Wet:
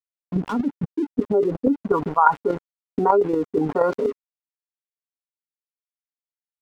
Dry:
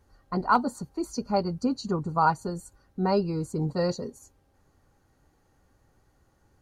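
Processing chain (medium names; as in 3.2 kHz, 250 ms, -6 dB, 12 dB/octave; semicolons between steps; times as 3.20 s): frequency weighting A; reverb removal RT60 1.9 s; dynamic bell 1.1 kHz, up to +6 dB, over -36 dBFS, Q 1.2; low-pass sweep 170 Hz -> 1 kHz, 0.88–1.95 s; small resonant body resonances 290/410/1400 Hz, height 16 dB, ringing for 75 ms; crossover distortion -53 dBFS; square tremolo 8.4 Hz, depth 60%, duty 10%; level flattener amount 70%; trim -3 dB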